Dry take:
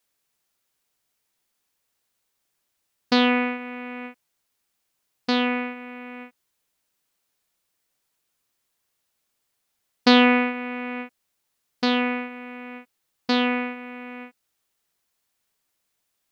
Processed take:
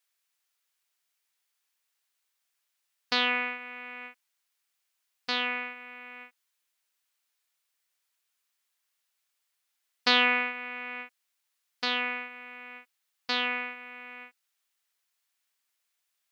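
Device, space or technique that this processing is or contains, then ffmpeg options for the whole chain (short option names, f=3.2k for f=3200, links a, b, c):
filter by subtraction: -filter_complex "[0:a]asplit=2[a][b];[b]lowpass=1.9k,volume=-1[c];[a][c]amix=inputs=2:normalize=0,volume=-4dB"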